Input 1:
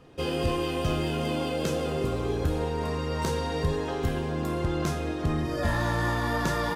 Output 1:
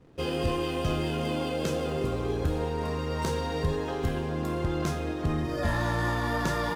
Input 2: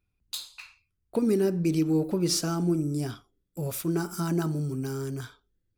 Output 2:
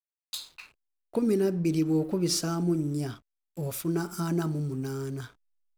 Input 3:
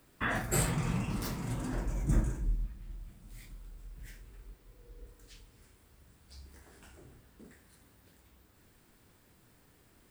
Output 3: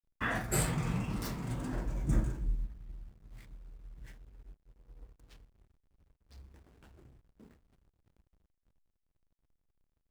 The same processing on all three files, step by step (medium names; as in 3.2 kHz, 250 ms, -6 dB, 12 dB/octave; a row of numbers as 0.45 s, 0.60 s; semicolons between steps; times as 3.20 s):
hysteresis with a dead band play -48 dBFS; trim -1 dB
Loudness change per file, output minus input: -1.0 LU, -1.0 LU, -1.0 LU